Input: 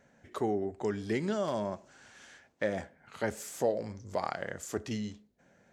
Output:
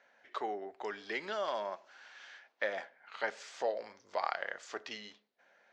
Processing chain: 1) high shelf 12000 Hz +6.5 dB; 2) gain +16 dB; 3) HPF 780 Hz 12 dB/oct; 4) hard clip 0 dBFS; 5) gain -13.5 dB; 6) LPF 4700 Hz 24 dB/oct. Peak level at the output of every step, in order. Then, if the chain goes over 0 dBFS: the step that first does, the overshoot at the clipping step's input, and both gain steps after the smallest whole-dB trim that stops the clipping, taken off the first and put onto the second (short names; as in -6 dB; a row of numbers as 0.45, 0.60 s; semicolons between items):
-17.0, -1.0, -4.0, -4.0, -17.5, -18.0 dBFS; no overload